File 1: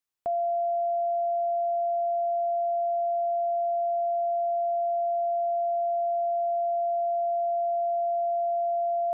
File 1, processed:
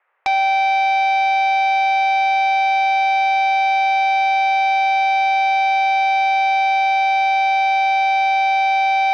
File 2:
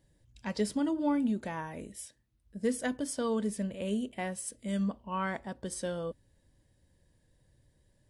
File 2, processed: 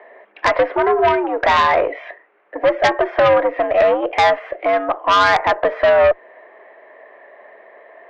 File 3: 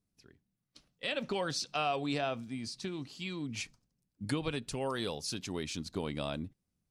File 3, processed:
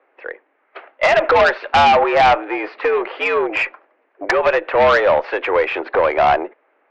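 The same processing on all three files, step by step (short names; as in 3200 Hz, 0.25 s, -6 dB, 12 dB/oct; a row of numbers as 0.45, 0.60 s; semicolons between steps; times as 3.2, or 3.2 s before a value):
dynamic EQ 770 Hz, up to +4 dB, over -45 dBFS, Q 5.9; compressor 5:1, threshold -38 dBFS; soft clip -36 dBFS; mistuned SSB +89 Hz 420–2100 Hz; added harmonics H 5 -7 dB, 6 -24 dB, 8 -20 dB, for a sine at -33 dBFS; match loudness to -16 LUFS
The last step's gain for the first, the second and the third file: +21.0, +26.0, +26.5 dB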